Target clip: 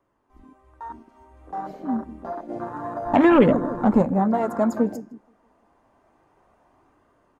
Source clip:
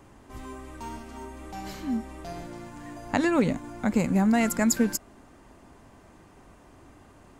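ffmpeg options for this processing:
-filter_complex "[0:a]equalizer=f=810:w=0.51:g=12.5,bandreject=f=7.6k:w=14,asplit=2[a][b];[b]adelay=159,lowpass=f=1.1k:p=1,volume=-14dB,asplit=2[c][d];[d]adelay=159,lowpass=f=1.1k:p=1,volume=0.54,asplit=2[e][f];[f]adelay=159,lowpass=f=1.1k:p=1,volume=0.54,asplit=2[g][h];[h]adelay=159,lowpass=f=1.1k:p=1,volume=0.54,asplit=2[i][j];[j]adelay=159,lowpass=f=1.1k:p=1,volume=0.54[k];[c][e][g][i][k]amix=inputs=5:normalize=0[l];[a][l]amix=inputs=2:normalize=0,asplit=3[m][n][o];[m]afade=t=out:st=2.48:d=0.02[p];[n]acontrast=77,afade=t=in:st=2.48:d=0.02,afade=t=out:st=4.01:d=0.02[q];[o]afade=t=in:st=4.01:d=0.02[r];[p][q][r]amix=inputs=3:normalize=0,acrossover=split=550|3200[s][t][u];[t]asoftclip=type=tanh:threshold=-13.5dB[v];[s][v][u]amix=inputs=3:normalize=0,flanger=delay=5.9:depth=3.7:regen=-88:speed=0.7:shape=sinusoidal,afwtdn=0.0447,dynaudnorm=f=340:g=9:m=12dB,flanger=delay=0.6:depth=3.6:regen=-70:speed=0.28:shape=sinusoidal"

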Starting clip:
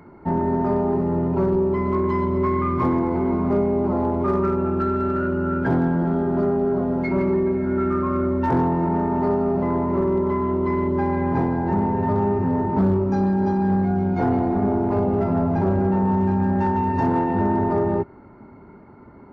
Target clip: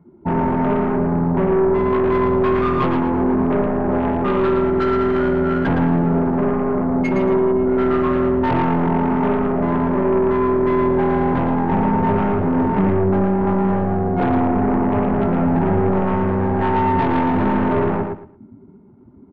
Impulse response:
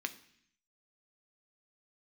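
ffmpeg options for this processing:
-filter_complex "[0:a]adynamicsmooth=sensitivity=4.5:basefreq=1k,afftdn=nr=17:nf=-33,aeval=exprs='0.266*(cos(1*acos(clip(val(0)/0.266,-1,1)))-cos(1*PI/2))+0.0668*(cos(2*acos(clip(val(0)/0.266,-1,1)))-cos(2*PI/2))+0.0596*(cos(5*acos(clip(val(0)/0.266,-1,1)))-cos(5*PI/2))+0.0075*(cos(7*acos(clip(val(0)/0.266,-1,1)))-cos(7*PI/2))':c=same,asplit=2[a][b];[b]aecho=0:1:113|226|339:0.531|0.117|0.0257[c];[a][c]amix=inputs=2:normalize=0"

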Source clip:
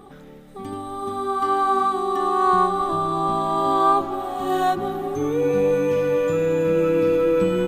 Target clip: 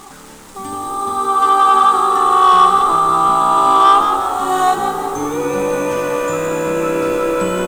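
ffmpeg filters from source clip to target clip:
-filter_complex "[0:a]acrusher=bits=7:mix=0:aa=0.000001,equalizer=f=125:t=o:w=1:g=-7,equalizer=f=500:t=o:w=1:g=-6,equalizer=f=1k:t=o:w=1:g=9,equalizer=f=8k:t=o:w=1:g=11,acontrast=84,asplit=2[a][b];[b]asplit=5[c][d][e][f][g];[c]adelay=172,afreqshift=63,volume=-7.5dB[h];[d]adelay=344,afreqshift=126,volume=-14.6dB[i];[e]adelay=516,afreqshift=189,volume=-21.8dB[j];[f]adelay=688,afreqshift=252,volume=-28.9dB[k];[g]adelay=860,afreqshift=315,volume=-36dB[l];[h][i][j][k][l]amix=inputs=5:normalize=0[m];[a][m]amix=inputs=2:normalize=0,volume=-2.5dB"

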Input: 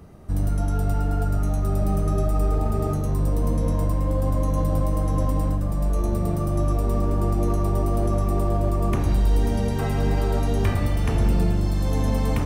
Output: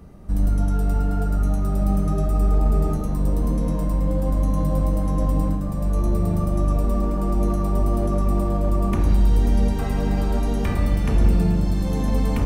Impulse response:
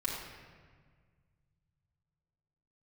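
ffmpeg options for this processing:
-filter_complex "[0:a]asplit=2[a][b];[1:a]atrim=start_sample=2205,lowshelf=f=460:g=11[c];[b][c]afir=irnorm=-1:irlink=0,volume=-12.5dB[d];[a][d]amix=inputs=2:normalize=0,volume=-3dB"

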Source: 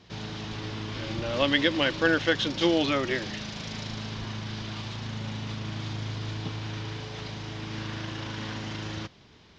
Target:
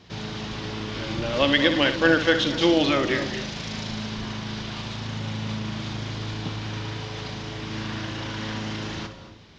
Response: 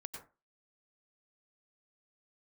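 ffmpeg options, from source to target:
-filter_complex "[0:a]asplit=2[a][b];[1:a]atrim=start_sample=2205,asetrate=27342,aresample=44100,adelay=61[c];[b][c]afir=irnorm=-1:irlink=0,volume=-7dB[d];[a][d]amix=inputs=2:normalize=0,volume=3.5dB"

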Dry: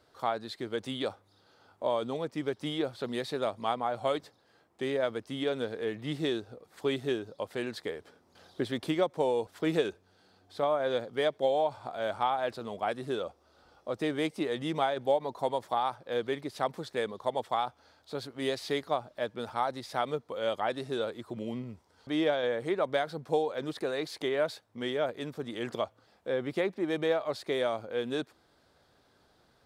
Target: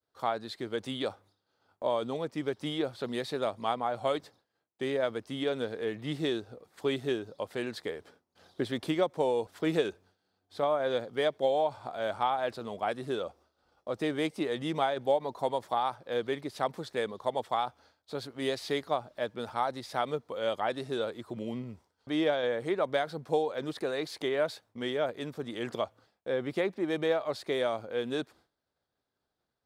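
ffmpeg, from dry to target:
-af "agate=range=-33dB:threshold=-53dB:ratio=3:detection=peak"

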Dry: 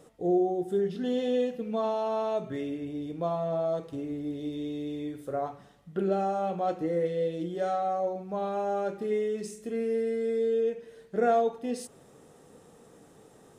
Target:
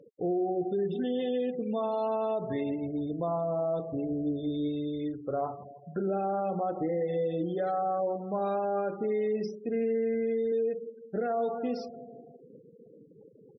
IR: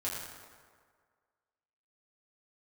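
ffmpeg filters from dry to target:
-filter_complex "[0:a]aecho=1:1:164|328|492|656|820|984:0.15|0.0898|0.0539|0.0323|0.0194|0.0116,alimiter=level_in=1.5dB:limit=-24dB:level=0:latency=1:release=57,volume=-1.5dB,asettb=1/sr,asplit=3[a][b][c];[a]atrim=end=9.874[d];[b]atrim=start=9.87:end=10.52,asetpts=PTS-STARTPTS,afade=t=in:d=0.004:c=qsin,afade=t=out:st=0.646:d=0.004:c=qsin,asubboost=boost=10:cutoff=200[e];[c]atrim=start=10.516[f];[d][e]acrossfade=d=0.004:c1=hsin:c2=qsin[g];[g][f]acrossfade=d=0.004:c1=qsin:c2=hsin,afftfilt=real='re*gte(hypot(re,im),0.00708)':imag='im*gte(hypot(re,im),0.00708)':win_size=1024:overlap=0.75,volume=3dB" -ar 24000 -c:a libmp3lame -b:a 24k

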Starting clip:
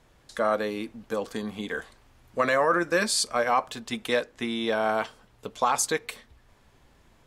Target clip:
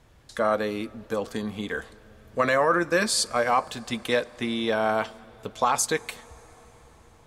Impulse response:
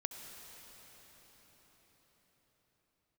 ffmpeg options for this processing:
-filter_complex "[0:a]equalizer=f=83:t=o:w=1.4:g=7,asplit=2[a][b];[1:a]atrim=start_sample=2205[c];[b][c]afir=irnorm=-1:irlink=0,volume=-16dB[d];[a][d]amix=inputs=2:normalize=0"

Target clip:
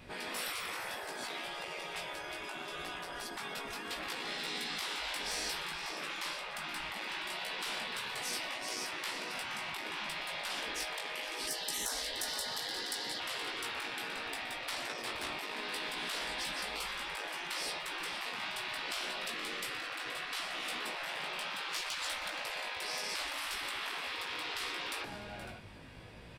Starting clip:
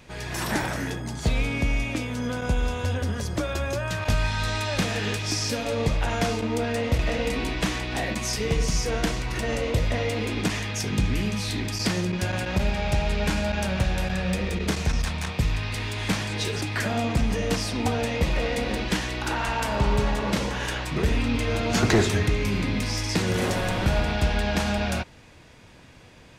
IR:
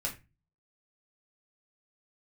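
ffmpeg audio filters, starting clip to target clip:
-filter_complex "[0:a]equalizer=f=6.5k:w=3.6:g=-12,asoftclip=type=tanh:threshold=-21dB,asettb=1/sr,asplit=3[a][b][c];[a]atrim=end=11.474[d];[b]atrim=start=11.47:end=13.18,asetpts=PTS-STARTPTS,afade=t=in:d=0.004:c=qsin,afade=t=out:st=1.706:d=0.004:c=qsin,highshelf=f=1.8k:t=q:w=3:g=8.5[e];[c]atrim=start=13.176[f];[d][e]acrossfade=d=0.004:c1=hsin:c2=qsin[g];[g][f]acrossfade=d=0.004:c1=qsin:c2=hsin,aecho=1:1:474|553:0.188|0.133,flanger=delay=17:depth=2.3:speed=0.68,afftfilt=real='re*lt(hypot(re,im),0.0398)':imag='im*lt(hypot(re,im),0.0398)':win_size=1024:overlap=0.75,volume=1dB"

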